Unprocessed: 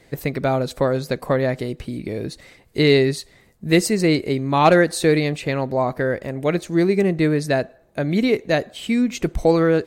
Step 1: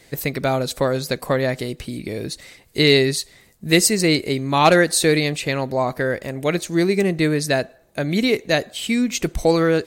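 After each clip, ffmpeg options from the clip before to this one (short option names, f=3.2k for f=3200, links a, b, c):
-af "highshelf=f=2.6k:g=10.5,volume=-1dB"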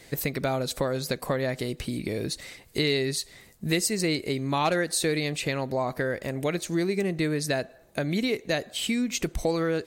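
-af "acompressor=threshold=-27dB:ratio=2.5"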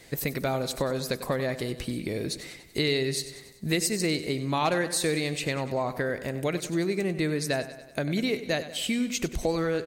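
-af "aecho=1:1:96|192|288|384|480|576:0.211|0.118|0.0663|0.0371|0.0208|0.0116,volume=-1dB"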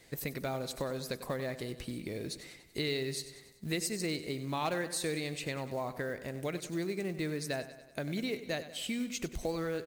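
-af "acrusher=bits=6:mode=log:mix=0:aa=0.000001,volume=-8dB"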